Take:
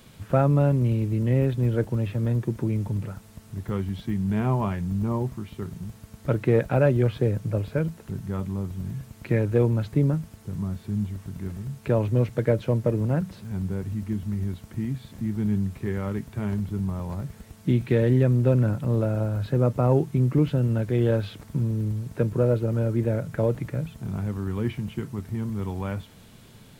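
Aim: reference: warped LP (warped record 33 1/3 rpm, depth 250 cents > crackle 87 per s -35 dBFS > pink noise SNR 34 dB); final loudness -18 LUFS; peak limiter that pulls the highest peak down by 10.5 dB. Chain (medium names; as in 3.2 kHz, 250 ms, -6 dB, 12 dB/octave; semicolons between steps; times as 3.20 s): peak limiter -18 dBFS; warped record 33 1/3 rpm, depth 250 cents; crackle 87 per s -35 dBFS; pink noise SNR 34 dB; trim +10.5 dB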